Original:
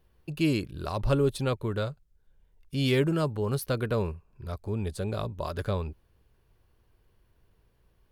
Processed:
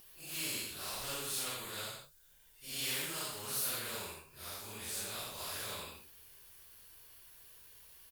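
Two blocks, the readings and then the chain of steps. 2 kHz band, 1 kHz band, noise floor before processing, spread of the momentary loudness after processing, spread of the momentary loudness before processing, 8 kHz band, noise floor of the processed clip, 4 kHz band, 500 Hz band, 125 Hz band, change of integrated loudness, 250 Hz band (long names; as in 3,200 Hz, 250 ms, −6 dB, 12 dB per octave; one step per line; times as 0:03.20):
−4.5 dB, −9.0 dB, −67 dBFS, 19 LU, 11 LU, +9.0 dB, −63 dBFS, 0.0 dB, −19.0 dB, −24.0 dB, −8.5 dB, −22.0 dB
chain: random phases in long frames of 200 ms
first-order pre-emphasis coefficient 0.97
single-tap delay 87 ms −11 dB
every bin compressed towards the loudest bin 2 to 1
level +3 dB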